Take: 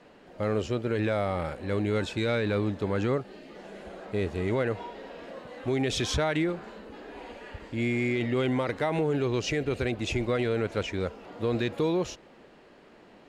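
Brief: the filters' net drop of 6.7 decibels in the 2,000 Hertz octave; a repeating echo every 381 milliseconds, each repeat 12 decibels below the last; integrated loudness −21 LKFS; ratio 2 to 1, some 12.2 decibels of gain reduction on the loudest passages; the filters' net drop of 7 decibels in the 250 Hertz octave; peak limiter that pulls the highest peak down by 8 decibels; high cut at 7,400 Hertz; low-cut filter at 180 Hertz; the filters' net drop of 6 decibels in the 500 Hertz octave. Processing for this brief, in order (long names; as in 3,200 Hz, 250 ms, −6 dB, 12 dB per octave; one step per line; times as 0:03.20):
high-pass filter 180 Hz
low-pass filter 7,400 Hz
parametric band 250 Hz −6 dB
parametric band 500 Hz −5 dB
parametric band 2,000 Hz −8 dB
downward compressor 2 to 1, threshold −52 dBFS
brickwall limiter −39.5 dBFS
repeating echo 381 ms, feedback 25%, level −12 dB
level +29.5 dB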